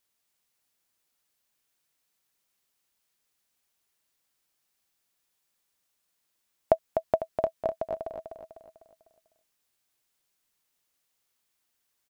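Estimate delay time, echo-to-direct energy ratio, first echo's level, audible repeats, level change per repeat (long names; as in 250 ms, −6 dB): 250 ms, −5.5 dB, −6.5 dB, 5, −7.0 dB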